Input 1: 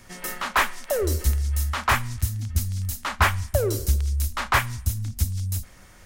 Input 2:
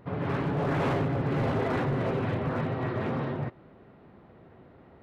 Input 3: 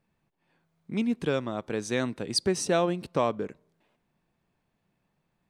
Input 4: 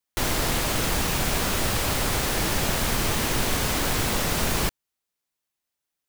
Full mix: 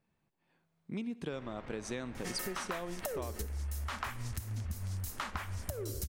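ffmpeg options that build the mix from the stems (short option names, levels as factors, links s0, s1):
-filter_complex "[0:a]acompressor=threshold=0.0447:ratio=6,adelay=2150,volume=1.26[s0];[2:a]volume=0.631,asplit=2[s1][s2];[s2]volume=0.0891[s3];[3:a]lowpass=f=2300:w=0.5412,lowpass=f=2300:w=1.3066,asoftclip=type=tanh:threshold=0.0447,adelay=1150,volume=0.158[s4];[s3]aecho=0:1:64|128|192|256|320|384|448|512:1|0.52|0.27|0.141|0.0731|0.038|0.0198|0.0103[s5];[s0][s1][s4][s5]amix=inputs=4:normalize=0,acompressor=threshold=0.0178:ratio=10"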